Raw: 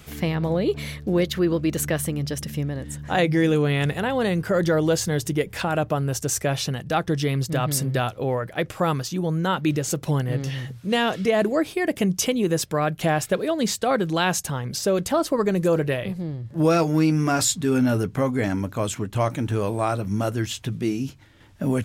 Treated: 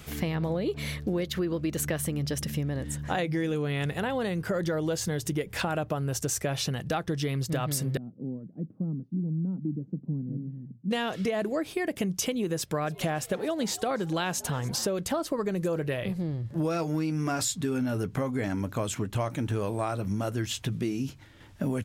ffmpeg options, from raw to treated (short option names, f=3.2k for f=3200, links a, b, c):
-filter_complex "[0:a]asettb=1/sr,asplit=3[a][b][c];[a]atrim=end=7.974[d];[b]atrim=start=7.97:end=10.91,asetpts=PTS-STARTPTS,afade=t=in:d=0.004:c=qsin,afade=t=out:st=2.936:d=0.004:c=qsin,asuperpass=centerf=210:order=4:qfactor=1.9[e];[c]atrim=start=10.906[f];[d][e]acrossfade=d=0.004:c1=hsin:c2=qsin[g];[g][f]acrossfade=d=0.004:c1=qsin:c2=hsin,asplit=3[h][i][j];[h]afade=t=out:st=12.83:d=0.02[k];[i]asplit=6[l][m][n][o][p][q];[m]adelay=285,afreqshift=84,volume=-22dB[r];[n]adelay=570,afreqshift=168,volume=-26dB[s];[o]adelay=855,afreqshift=252,volume=-30dB[t];[p]adelay=1140,afreqshift=336,volume=-34dB[u];[q]adelay=1425,afreqshift=420,volume=-38.1dB[v];[l][r][s][t][u][v]amix=inputs=6:normalize=0,afade=t=in:st=12.83:d=0.02,afade=t=out:st=14.86:d=0.02[w];[j]afade=t=in:st=14.86:d=0.02[x];[k][w][x]amix=inputs=3:normalize=0,acompressor=threshold=-26dB:ratio=6"